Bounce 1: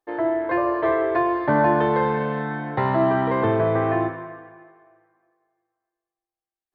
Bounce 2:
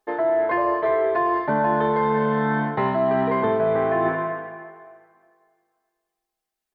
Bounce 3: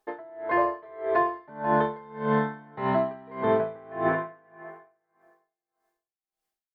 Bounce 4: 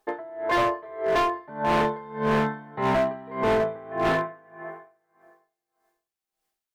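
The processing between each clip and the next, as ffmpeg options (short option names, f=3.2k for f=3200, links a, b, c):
-af "aecho=1:1:4.7:0.66,areverse,acompressor=threshold=-26dB:ratio=6,areverse,volume=7.5dB"
-af "aeval=exprs='val(0)*pow(10,-26*(0.5-0.5*cos(2*PI*1.7*n/s))/20)':c=same"
-af "volume=24dB,asoftclip=hard,volume=-24dB,volume=5dB"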